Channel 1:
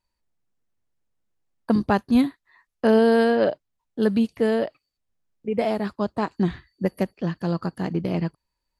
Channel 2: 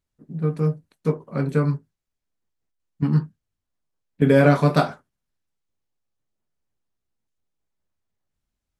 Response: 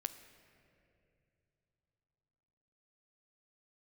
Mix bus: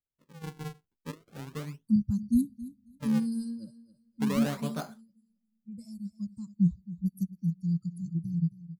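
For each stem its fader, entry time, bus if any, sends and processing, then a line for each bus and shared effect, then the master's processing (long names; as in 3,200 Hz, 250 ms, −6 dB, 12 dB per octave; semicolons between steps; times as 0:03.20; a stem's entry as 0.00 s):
+2.5 dB, 0.20 s, send −21.5 dB, echo send −16 dB, spectral dynamics exaggerated over time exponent 2; inverse Chebyshev band-stop filter 390–3,400 Hz, stop band 40 dB
−18.0 dB, 0.00 s, no send, no echo send, sample-and-hold swept by an LFO 41×, swing 160% 0.36 Hz; pitch vibrato 1.9 Hz 34 cents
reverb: on, pre-delay 10 ms
echo: repeating echo 270 ms, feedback 18%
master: no processing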